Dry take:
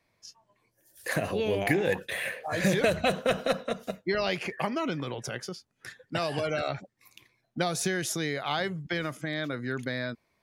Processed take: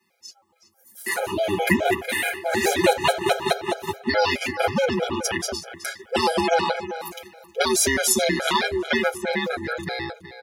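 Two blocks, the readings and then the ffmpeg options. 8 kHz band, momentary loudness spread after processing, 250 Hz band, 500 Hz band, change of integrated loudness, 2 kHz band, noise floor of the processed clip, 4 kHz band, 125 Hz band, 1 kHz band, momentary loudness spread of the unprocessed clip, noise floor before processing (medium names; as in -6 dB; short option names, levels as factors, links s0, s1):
+12.5 dB, 12 LU, +5.5 dB, +6.5 dB, +7.0 dB, +7.5 dB, -63 dBFS, +9.0 dB, -0.5 dB, +10.0 dB, 11 LU, -74 dBFS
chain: -filter_complex "[0:a]dynaudnorm=f=240:g=11:m=3.16,aeval=exprs='val(0)*sin(2*PI*160*n/s)':c=same,highpass=47,aecho=1:1:6.4:0.99,asplit=2[s0][s1];[s1]acompressor=threshold=0.0282:ratio=6,volume=1.12[s2];[s0][s2]amix=inputs=2:normalize=0,afreqshift=52,highshelf=f=7100:g=7.5,asplit=2[s3][s4];[s4]adelay=372,lowpass=f=4800:p=1,volume=0.251,asplit=2[s5][s6];[s6]adelay=372,lowpass=f=4800:p=1,volume=0.21,asplit=2[s7][s8];[s8]adelay=372,lowpass=f=4800:p=1,volume=0.21[s9];[s5][s7][s9]amix=inputs=3:normalize=0[s10];[s3][s10]amix=inputs=2:normalize=0,afftfilt=real='re*gt(sin(2*PI*4.7*pts/sr)*(1-2*mod(floor(b*sr/1024/420),2)),0)':imag='im*gt(sin(2*PI*4.7*pts/sr)*(1-2*mod(floor(b*sr/1024/420),2)),0)':win_size=1024:overlap=0.75"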